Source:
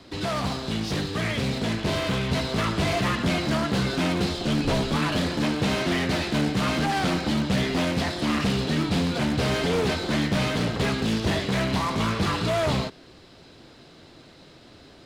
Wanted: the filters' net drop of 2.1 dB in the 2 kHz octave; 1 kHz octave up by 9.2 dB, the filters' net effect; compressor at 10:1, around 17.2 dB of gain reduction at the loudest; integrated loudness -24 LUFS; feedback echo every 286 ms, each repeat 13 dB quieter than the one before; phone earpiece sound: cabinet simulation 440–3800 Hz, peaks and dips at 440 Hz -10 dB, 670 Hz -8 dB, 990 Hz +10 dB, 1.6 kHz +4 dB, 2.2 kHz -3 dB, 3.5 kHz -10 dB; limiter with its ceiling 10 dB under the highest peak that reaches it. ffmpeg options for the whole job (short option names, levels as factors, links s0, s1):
-af "equalizer=f=1000:t=o:g=7.5,equalizer=f=2000:t=o:g=-7.5,acompressor=threshold=0.0126:ratio=10,alimiter=level_in=4.47:limit=0.0631:level=0:latency=1,volume=0.224,highpass=440,equalizer=f=440:t=q:w=4:g=-10,equalizer=f=670:t=q:w=4:g=-8,equalizer=f=990:t=q:w=4:g=10,equalizer=f=1600:t=q:w=4:g=4,equalizer=f=2200:t=q:w=4:g=-3,equalizer=f=3500:t=q:w=4:g=-10,lowpass=f=3800:w=0.5412,lowpass=f=3800:w=1.3066,aecho=1:1:286|572|858:0.224|0.0493|0.0108,volume=12.6"